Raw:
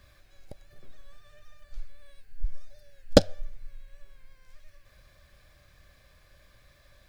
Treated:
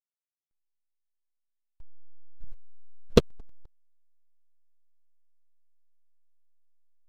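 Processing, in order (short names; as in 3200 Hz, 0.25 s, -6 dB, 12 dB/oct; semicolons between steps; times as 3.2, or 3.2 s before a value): repeated pitch sweeps -6 st, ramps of 0.181 s; Schroeder reverb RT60 3.7 s, combs from 28 ms, DRR 18 dB; backlash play -20.5 dBFS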